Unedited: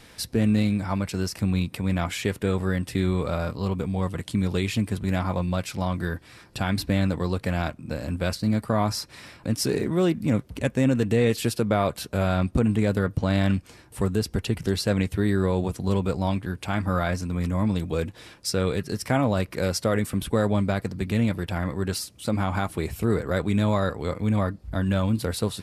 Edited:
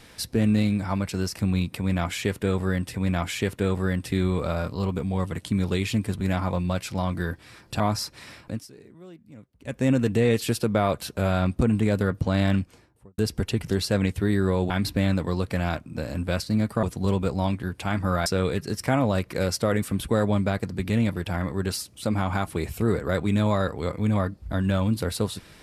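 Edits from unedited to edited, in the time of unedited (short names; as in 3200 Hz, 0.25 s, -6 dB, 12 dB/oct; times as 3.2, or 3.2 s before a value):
1.77–2.94 loop, 2 plays
6.63–8.76 move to 15.66
9.36–10.83 dip -23.5 dB, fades 0.27 s
13.43–14.14 studio fade out
17.09–18.48 cut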